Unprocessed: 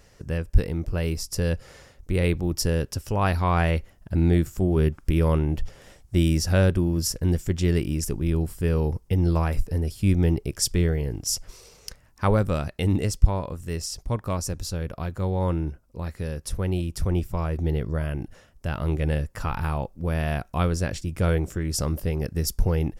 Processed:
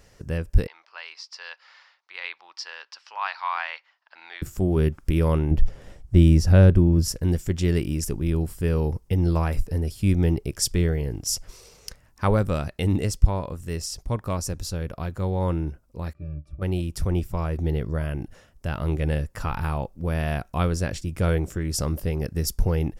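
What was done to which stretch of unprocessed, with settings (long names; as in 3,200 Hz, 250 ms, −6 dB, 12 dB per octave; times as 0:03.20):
0:00.67–0:04.42: Chebyshev band-pass filter 930–4,700 Hz, order 3
0:05.51–0:07.08: spectral tilt −2 dB per octave
0:16.13–0:16.62: resonances in every octave D, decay 0.11 s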